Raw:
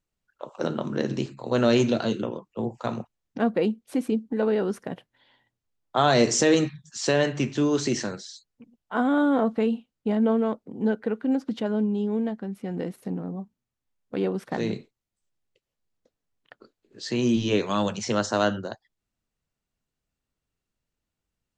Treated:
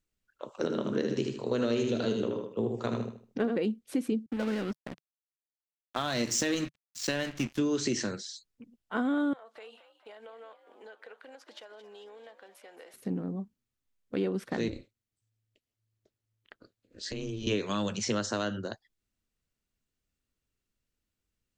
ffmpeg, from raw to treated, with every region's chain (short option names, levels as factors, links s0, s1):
-filter_complex "[0:a]asettb=1/sr,asplit=3[s0][s1][s2];[s0]atrim=end=0.624[s3];[s1]atrim=start=0.62:end=3.57,asetpts=PTS-STARTPTS,afade=t=in:d=0.004:c=qsin,afade=t=out:st=2.946:d=0.004:c=qsin,equalizer=f=430:t=o:w=0.31:g=8,aecho=1:1:77|154|231|308:0.562|0.174|0.054|0.0168,atrim=end_sample=130095[s4];[s2]atrim=start=3.566[s5];[s3][s4]acrossfade=d=0.004:c1=hsin:c2=qsin[s6];[s6][s5]acrossfade=d=0.004:c1=qsin:c2=hsin,asettb=1/sr,asplit=3[s7][s8][s9];[s7]atrim=end=4.264[s10];[s8]atrim=start=4.26:end=7.59,asetpts=PTS-STARTPTS,afade=t=in:d=0.004:c=qsin,afade=t=out:st=3.326:d=0.004:c=qsin,aeval=exprs='sgn(val(0))*max(abs(val(0))-0.0178,0)':c=same,equalizer=f=420:t=o:w=0.42:g=-9[s11];[s9]atrim=start=7.586[s12];[s10][s11]acrossfade=d=0.004:c1=hsin:c2=qsin[s13];[s13][s12]acrossfade=d=0.004:c1=qsin:c2=hsin,asettb=1/sr,asplit=3[s14][s15][s16];[s14]atrim=end=9.334[s17];[s15]atrim=start=9.33:end=12.94,asetpts=PTS-STARTPTS,afade=t=in:d=0.004:c=qsin,afade=t=out:st=3.606:d=0.004:c=qsin,highpass=f=590:w=0.5412,highpass=f=590:w=1.3066,acompressor=threshold=0.00631:ratio=4:attack=3.2:release=140:knee=1:detection=peak,asplit=7[s18][s19][s20][s21][s22][s23][s24];[s19]adelay=222,afreqshift=71,volume=0.211[s25];[s20]adelay=444,afreqshift=142,volume=0.124[s26];[s21]adelay=666,afreqshift=213,volume=0.0733[s27];[s22]adelay=888,afreqshift=284,volume=0.0437[s28];[s23]adelay=1110,afreqshift=355,volume=0.0257[s29];[s24]adelay=1332,afreqshift=426,volume=0.0151[s30];[s18][s25][s26][s27][s28][s29][s30]amix=inputs=7:normalize=0,atrim=end_sample=159201[s31];[s16]atrim=start=12.936[s32];[s17][s31]acrossfade=d=0.004:c1=hsin:c2=qsin[s33];[s33][s32]acrossfade=d=0.004:c1=qsin:c2=hsin,asettb=1/sr,asplit=3[s34][s35][s36];[s34]atrim=end=14.684[s37];[s35]atrim=start=14.68:end=17.47,asetpts=PTS-STARTPTS,afade=t=in:d=0.004:c=qsin,afade=t=out:st=2.786:d=0.004:c=qsin,aeval=exprs='val(0)*sin(2*PI*110*n/s)':c=same,acompressor=threshold=0.0282:ratio=6:attack=3.2:release=140:knee=1:detection=peak[s38];[s36]atrim=start=17.466[s39];[s37][s38]acrossfade=d=0.004:c1=hsin:c2=qsin[s40];[s40][s39]acrossfade=d=0.004:c1=qsin:c2=hsin,equalizer=f=150:w=4.1:g=-6,acompressor=threshold=0.0631:ratio=6,equalizer=f=810:w=1.3:g=-7"